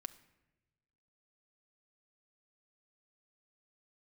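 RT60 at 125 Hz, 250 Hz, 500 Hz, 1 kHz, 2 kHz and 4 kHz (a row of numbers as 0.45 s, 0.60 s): 1.6 s, 1.3 s, 1.2 s, 0.90 s, 0.95 s, 0.65 s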